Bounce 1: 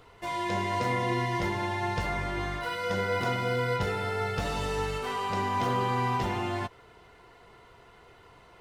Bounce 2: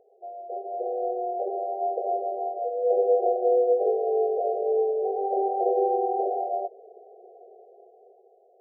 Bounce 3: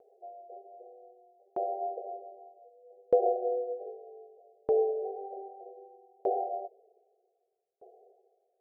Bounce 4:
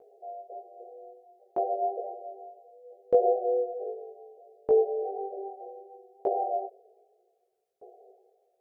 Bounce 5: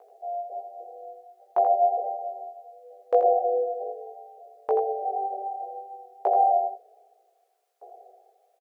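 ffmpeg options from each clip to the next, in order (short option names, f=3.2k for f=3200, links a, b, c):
-af "afftfilt=real='re*between(b*sr/4096,360,810)':imag='im*between(b*sr/4096,360,810)':win_size=4096:overlap=0.75,dynaudnorm=f=260:g=9:m=10.5dB"
-af "aeval=exprs='val(0)*pow(10,-39*if(lt(mod(0.64*n/s,1),2*abs(0.64)/1000),1-mod(0.64*n/s,1)/(2*abs(0.64)/1000),(mod(0.64*n/s,1)-2*abs(0.64)/1000)/(1-2*abs(0.64)/1000))/20)':c=same"
-filter_complex "[0:a]asplit=2[a][b];[b]alimiter=limit=-23dB:level=0:latency=1:release=338,volume=3dB[c];[a][c]amix=inputs=2:normalize=0,flanger=delay=16.5:depth=2:speed=1.4"
-af "highpass=f=960:t=q:w=1.6,aecho=1:1:83:0.422,volume=9dB"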